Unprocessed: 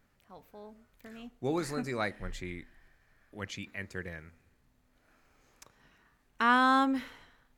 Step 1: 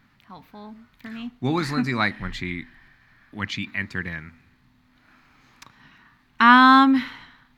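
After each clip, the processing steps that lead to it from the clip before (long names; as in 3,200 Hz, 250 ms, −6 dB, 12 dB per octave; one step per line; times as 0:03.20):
octave-band graphic EQ 125/250/500/1,000/2,000/4,000/8,000 Hz +8/+10/−8/+9/+7/+10/−5 dB
level +3 dB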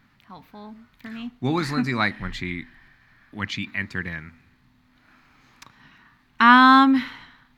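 no processing that can be heard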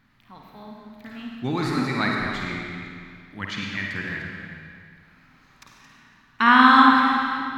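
delay that plays each chunk backwards 239 ms, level −10.5 dB
on a send: flutter between parallel walls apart 8.8 metres, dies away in 0.38 s
on the sum: comb and all-pass reverb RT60 2.2 s, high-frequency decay 0.9×, pre-delay 30 ms, DRR 0.5 dB
level −3.5 dB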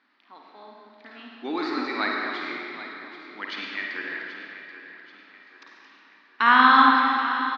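elliptic band-pass filter 300–4,800 Hz, stop band 40 dB
repeating echo 782 ms, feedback 42%, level −13 dB
level −1 dB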